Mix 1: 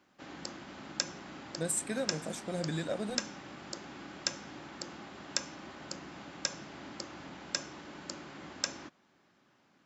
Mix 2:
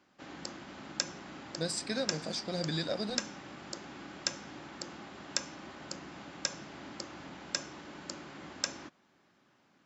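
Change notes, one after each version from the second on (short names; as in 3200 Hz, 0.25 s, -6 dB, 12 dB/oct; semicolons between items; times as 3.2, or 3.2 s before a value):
speech: add synth low-pass 4800 Hz, resonance Q 12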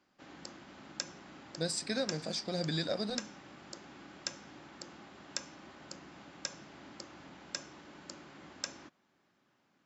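background -5.5 dB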